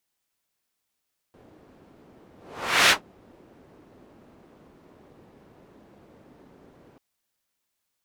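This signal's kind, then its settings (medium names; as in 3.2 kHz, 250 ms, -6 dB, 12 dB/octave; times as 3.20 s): whoosh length 5.64 s, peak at 1.56 s, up 0.58 s, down 0.13 s, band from 330 Hz, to 2.5 kHz, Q 0.88, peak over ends 37 dB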